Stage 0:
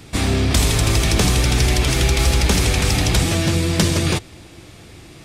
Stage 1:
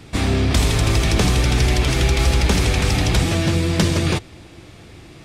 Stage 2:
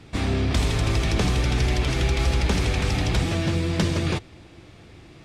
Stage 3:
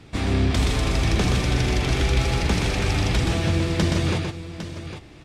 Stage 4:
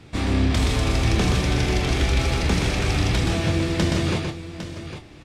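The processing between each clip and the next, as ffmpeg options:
-af "highshelf=f=6k:g=-8"
-af "highshelf=f=8.7k:g=-10.5,volume=-5dB"
-af "aecho=1:1:123|805:0.596|0.282"
-filter_complex "[0:a]asplit=2[a][b];[b]adelay=27,volume=-8.5dB[c];[a][c]amix=inputs=2:normalize=0"

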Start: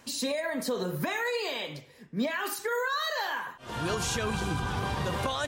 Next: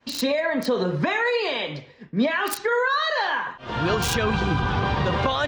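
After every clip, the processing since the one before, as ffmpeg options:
-filter_complex "[0:a]agate=range=-33dB:threshold=-50dB:ratio=3:detection=peak,acrossover=split=5000[a][b];[b]acrusher=bits=4:mix=0:aa=0.000001[c];[a][c]amix=inputs=2:normalize=0,volume=8dB"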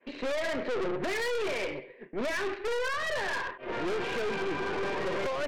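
-af "highpass=370,equalizer=f=380:t=q:w=4:g=10,equalizer=f=560:t=q:w=4:g=3,equalizer=f=830:t=q:w=4:g=-9,equalizer=f=1.3k:t=q:w=4:g=-10,equalizer=f=2.3k:t=q:w=4:g=4,lowpass=f=2.3k:w=0.5412,lowpass=f=2.3k:w=1.3066,aeval=exprs='(tanh(39.8*val(0)+0.55)-tanh(0.55))/39.8':c=same,volume=2.5dB"

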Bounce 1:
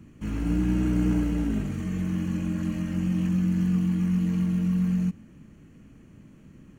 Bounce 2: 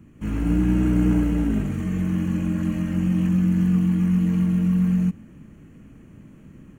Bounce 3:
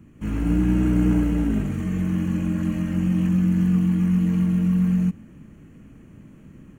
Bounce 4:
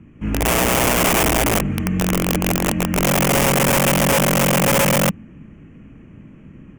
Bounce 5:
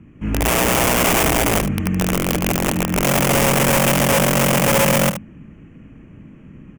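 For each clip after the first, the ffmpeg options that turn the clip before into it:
-af "equalizer=f=4.8k:t=o:w=0.97:g=-7.5,dynaudnorm=f=130:g=3:m=4.5dB"
-af anull
-af "lowpass=2.9k,aeval=exprs='(mod(7.08*val(0)+1,2)-1)/7.08':c=same,aexciter=amount=1.5:drive=2.5:freq=2.2k,volume=4dB"
-af "aecho=1:1:75:0.299"

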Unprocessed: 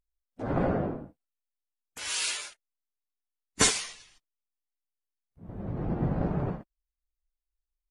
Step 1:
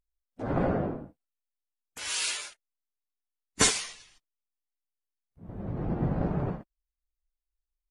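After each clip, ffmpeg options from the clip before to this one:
-af anull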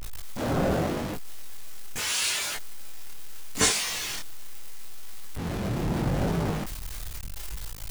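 -af "aeval=exprs='val(0)+0.5*0.0562*sgn(val(0))':c=same,flanger=delay=18.5:depth=7.8:speed=0.78,volume=1.5dB"

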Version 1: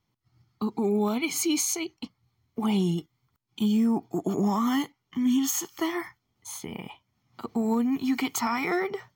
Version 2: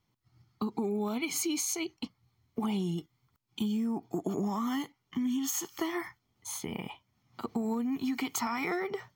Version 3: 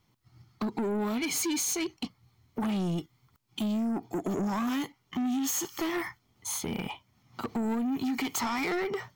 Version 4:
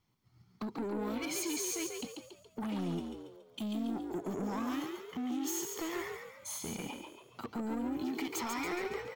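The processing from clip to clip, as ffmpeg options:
-af "acompressor=threshold=-29dB:ratio=6"
-af "asoftclip=type=tanh:threshold=-33.5dB,volume=7dB"
-filter_complex "[0:a]asplit=7[a][b][c][d][e][f][g];[b]adelay=140,afreqshift=63,volume=-5dB[h];[c]adelay=280,afreqshift=126,volume=-11.7dB[i];[d]adelay=420,afreqshift=189,volume=-18.5dB[j];[e]adelay=560,afreqshift=252,volume=-25.2dB[k];[f]adelay=700,afreqshift=315,volume=-32dB[l];[g]adelay=840,afreqshift=378,volume=-38.7dB[m];[a][h][i][j][k][l][m]amix=inputs=7:normalize=0,volume=-7.5dB"

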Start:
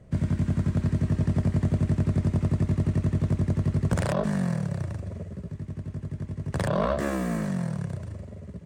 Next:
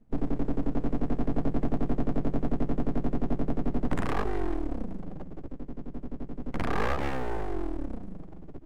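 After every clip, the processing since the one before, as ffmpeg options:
-af "afftdn=nr=19:nf=-35,aeval=exprs='abs(val(0))':c=same"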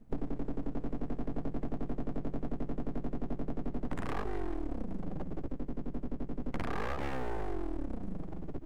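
-af "acompressor=threshold=-34dB:ratio=6,volume=4dB"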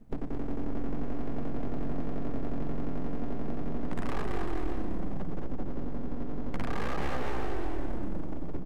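-filter_complex "[0:a]asplit=2[a][b];[b]asoftclip=type=hard:threshold=-37dB,volume=-7.5dB[c];[a][c]amix=inputs=2:normalize=0,aecho=1:1:220|385|508.8|601.6|671.2:0.631|0.398|0.251|0.158|0.1"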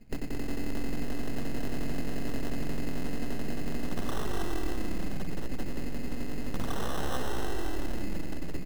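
-af "acrusher=samples=19:mix=1:aa=0.000001"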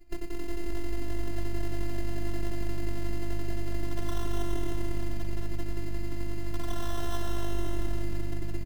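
-filter_complex "[0:a]afftfilt=real='hypot(re,im)*cos(PI*b)':imag='0':win_size=512:overlap=0.75,asplit=6[a][b][c][d][e][f];[b]adelay=283,afreqshift=-50,volume=-13dB[g];[c]adelay=566,afreqshift=-100,volume=-18.8dB[h];[d]adelay=849,afreqshift=-150,volume=-24.7dB[i];[e]adelay=1132,afreqshift=-200,volume=-30.5dB[j];[f]adelay=1415,afreqshift=-250,volume=-36.4dB[k];[a][g][h][i][j][k]amix=inputs=6:normalize=0,volume=1.5dB"

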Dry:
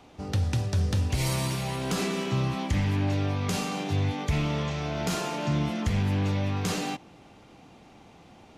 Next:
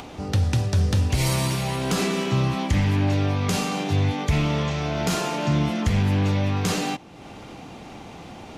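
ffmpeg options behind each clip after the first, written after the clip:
-af "acompressor=mode=upward:threshold=-36dB:ratio=2.5,volume=5dB"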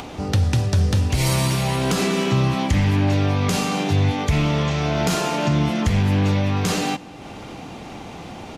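-filter_complex "[0:a]alimiter=limit=-14.5dB:level=0:latency=1:release=388,asplit=2[a][b];[b]adelay=198.3,volume=-21dB,highshelf=f=4k:g=-4.46[c];[a][c]amix=inputs=2:normalize=0,volume=4.5dB"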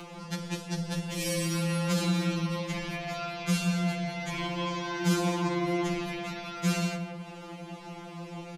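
-filter_complex "[0:a]asplit=2[a][b];[b]adelay=175,lowpass=f=1.6k:p=1,volume=-5.5dB,asplit=2[c][d];[d]adelay=175,lowpass=f=1.6k:p=1,volume=0.49,asplit=2[e][f];[f]adelay=175,lowpass=f=1.6k:p=1,volume=0.49,asplit=2[g][h];[h]adelay=175,lowpass=f=1.6k:p=1,volume=0.49,asplit=2[i][j];[j]adelay=175,lowpass=f=1.6k:p=1,volume=0.49,asplit=2[k][l];[l]adelay=175,lowpass=f=1.6k:p=1,volume=0.49[m];[a][c][e][g][i][k][m]amix=inputs=7:normalize=0,afftfilt=real='re*2.83*eq(mod(b,8),0)':imag='im*2.83*eq(mod(b,8),0)':win_size=2048:overlap=0.75,volume=-6dB"

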